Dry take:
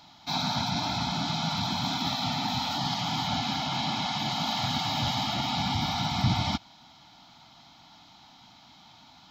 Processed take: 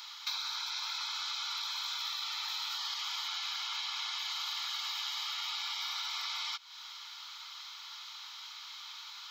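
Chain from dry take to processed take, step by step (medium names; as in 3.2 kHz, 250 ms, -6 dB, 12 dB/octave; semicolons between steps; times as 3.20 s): elliptic high-pass 1.1 kHz, stop band 70 dB; treble shelf 7.2 kHz +6.5 dB; compression 12:1, threshold -43 dBFS, peak gain reduction 15.5 dB; trim +8.5 dB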